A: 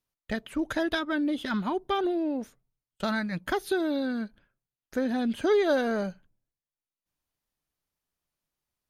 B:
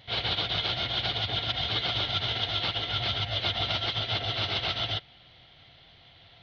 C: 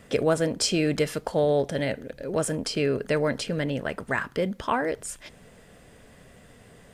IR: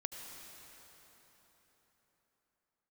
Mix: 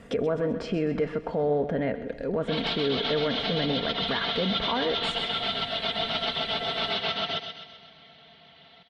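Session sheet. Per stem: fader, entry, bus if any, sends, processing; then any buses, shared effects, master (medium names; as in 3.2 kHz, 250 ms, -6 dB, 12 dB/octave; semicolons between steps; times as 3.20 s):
mute
+1.0 dB, 2.40 s, bus A, send -17 dB, echo send -10.5 dB, Chebyshev high-pass 150 Hz, order 2; comb 4.5 ms, depth 91%
+2.0 dB, 0.00 s, bus A, send -19.5 dB, echo send -18.5 dB, low-pass that closes with the level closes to 1.9 kHz, closed at -24.5 dBFS; comb 4.3 ms, depth 38%
bus A: 0.0 dB, low-pass 2.7 kHz 6 dB/octave; peak limiter -20 dBFS, peak gain reduction 11.5 dB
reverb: on, RT60 4.2 s, pre-delay 68 ms
echo: feedback delay 129 ms, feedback 50%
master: none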